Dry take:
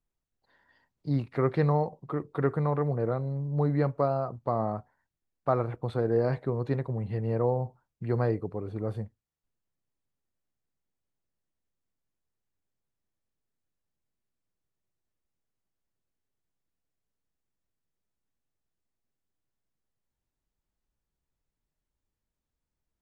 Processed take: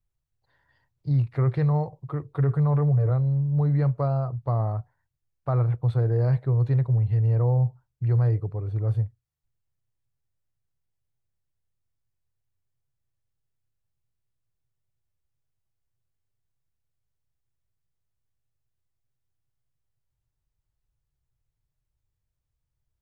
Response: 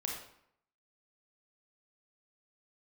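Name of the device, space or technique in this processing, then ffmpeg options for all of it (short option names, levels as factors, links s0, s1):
car stereo with a boomy subwoofer: -filter_complex "[0:a]asettb=1/sr,asplit=3[s0][s1][s2];[s0]atrim=end=2.384[s3];[s1]atrim=start=2.38:end=3.1,asetpts=PTS-STARTPTS,afade=t=in:d=0.004:c=qsin,afade=t=out:st=0.716:d=0.004:c=qsin,aecho=1:1:7:0.72,atrim=end_sample=31752[s4];[s2]atrim=start=3.096[s5];[s3][s4]acrossfade=d=0.004:c1=hsin:c2=qsin[s6];[s6][s5]acrossfade=d=0.004:c1=qsin:c2=hsin,lowshelf=f=160:t=q:w=3:g=8,alimiter=limit=0.2:level=0:latency=1:release=14,volume=0.794"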